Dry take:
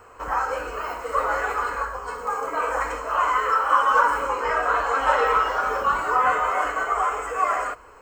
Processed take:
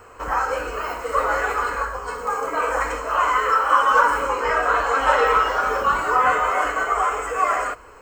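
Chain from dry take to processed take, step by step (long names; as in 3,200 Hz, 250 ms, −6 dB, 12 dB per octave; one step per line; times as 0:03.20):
parametric band 920 Hz −3 dB 1.4 octaves
level +4.5 dB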